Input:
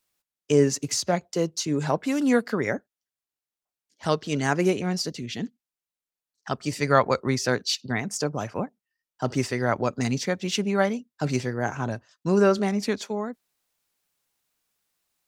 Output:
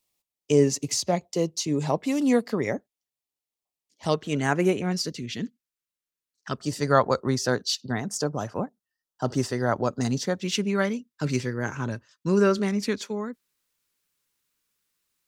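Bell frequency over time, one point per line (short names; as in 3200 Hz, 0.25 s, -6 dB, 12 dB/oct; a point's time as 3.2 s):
bell -12.5 dB 0.42 oct
1500 Hz
from 4.14 s 4900 Hz
from 4.92 s 770 Hz
from 6.58 s 2300 Hz
from 10.4 s 720 Hz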